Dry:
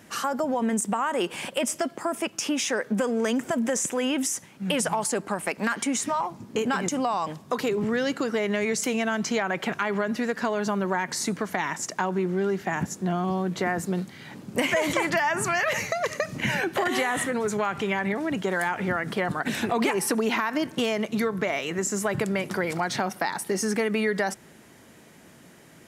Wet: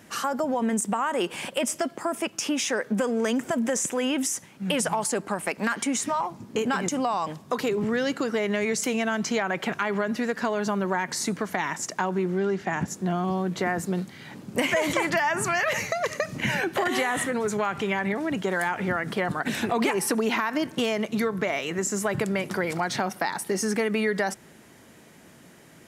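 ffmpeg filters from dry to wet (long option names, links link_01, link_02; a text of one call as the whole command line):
ffmpeg -i in.wav -filter_complex "[0:a]asettb=1/sr,asplit=3[link_01][link_02][link_03];[link_01]atrim=end=12.384[link_04];[link_02]atrim=start=12.38:end=12.88,asetpts=PTS-STARTPTS,afade=type=in:duration=0.004:curve=qsin,afade=type=out:start_time=0.496:duration=0.004:curve=qsin,lowpass=7700[link_05];[link_03]atrim=start=12.876[link_06];[link_04][link_05]acrossfade=duration=0.004:curve1=hsin:curve2=qsin[link_07];[link_07][link_06]acrossfade=duration=0.004:curve1=qsin:curve2=hsin" out.wav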